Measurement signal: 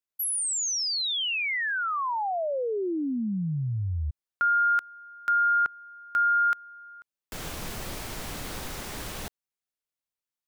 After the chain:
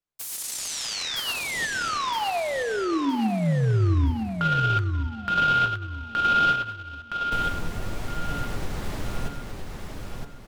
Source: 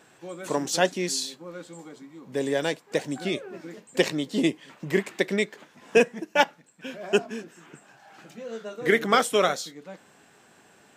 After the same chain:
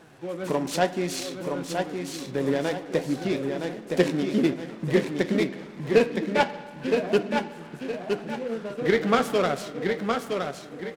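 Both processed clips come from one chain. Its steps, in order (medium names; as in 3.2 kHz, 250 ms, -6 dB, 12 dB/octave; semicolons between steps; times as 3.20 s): tilt EQ -2 dB/octave; in parallel at +2.5 dB: compression, threshold -32 dBFS; on the sum: flange 0.85 Hz, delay 5.7 ms, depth 6.7 ms, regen +60%; on a send: feedback delay 966 ms, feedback 36%, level -5 dB; on the sum: spring tank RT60 1.6 s, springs 46/50 ms, chirp 55 ms, DRR 13.5 dB; delay time shaken by noise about 1.5 kHz, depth 0.031 ms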